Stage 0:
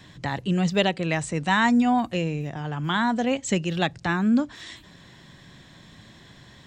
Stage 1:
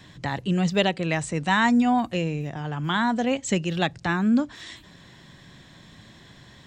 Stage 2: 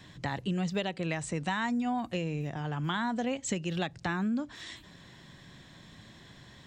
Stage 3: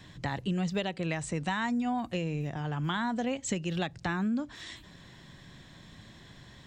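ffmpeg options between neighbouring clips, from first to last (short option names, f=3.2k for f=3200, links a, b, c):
-af anull
-af "acompressor=threshold=-24dB:ratio=10,volume=-3.5dB"
-af "lowshelf=f=67:g=6.5"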